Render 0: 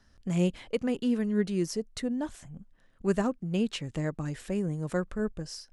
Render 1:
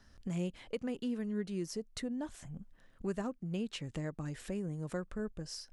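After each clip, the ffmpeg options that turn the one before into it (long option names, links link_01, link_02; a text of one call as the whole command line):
ffmpeg -i in.wav -af "acompressor=threshold=-43dB:ratio=2,volume=1dB" out.wav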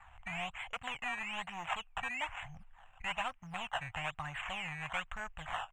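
ffmpeg -i in.wav -af "acrusher=samples=14:mix=1:aa=0.000001:lfo=1:lforange=14:lforate=1.1,asoftclip=type=hard:threshold=-34.5dB,firequalizer=gain_entry='entry(100,0);entry(210,-18);entry(390,-24);entry(740,11);entry(1400,9);entry(2800,14);entry(4700,-23);entry(7400,3);entry(11000,-22)':delay=0.05:min_phase=1,volume=1.5dB" out.wav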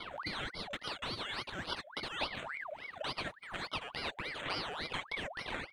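ffmpeg -i in.wav -af "acompressor=threshold=-53dB:ratio=2,aphaser=in_gain=1:out_gain=1:delay=3.4:decay=0.44:speed=0.44:type=sinusoidal,aeval=exprs='val(0)*sin(2*PI*1400*n/s+1400*0.6/3.5*sin(2*PI*3.5*n/s))':channel_layout=same,volume=10.5dB" out.wav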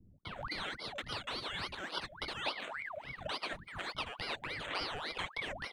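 ffmpeg -i in.wav -filter_complex "[0:a]acrossover=split=220[link_01][link_02];[link_02]adelay=250[link_03];[link_01][link_03]amix=inputs=2:normalize=0" out.wav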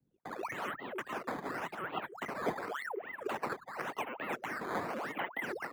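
ffmpeg -i in.wav -filter_complex "[0:a]highpass=frequency=280:width_type=q:width=0.5412,highpass=frequency=280:width_type=q:width=1.307,lowpass=frequency=3300:width_type=q:width=0.5176,lowpass=frequency=3300:width_type=q:width=0.7071,lowpass=frequency=3300:width_type=q:width=1.932,afreqshift=-200,acrusher=samples=9:mix=1:aa=0.000001:lfo=1:lforange=14.4:lforate=0.9,acrossover=split=150 2200:gain=0.1 1 0.2[link_01][link_02][link_03];[link_01][link_02][link_03]amix=inputs=3:normalize=0,volume=5dB" out.wav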